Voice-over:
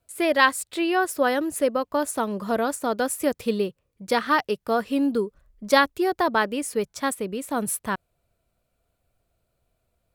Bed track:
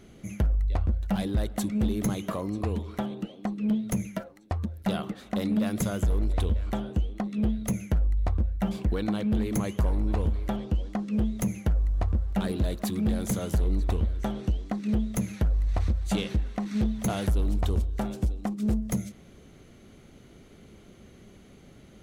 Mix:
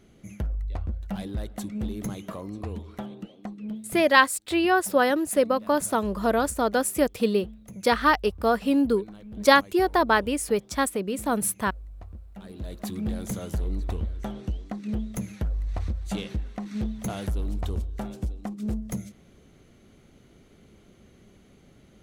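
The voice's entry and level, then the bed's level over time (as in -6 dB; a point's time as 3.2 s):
3.75 s, +1.0 dB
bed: 3.39 s -5 dB
4.38 s -16.5 dB
12.38 s -16.5 dB
12.85 s -3.5 dB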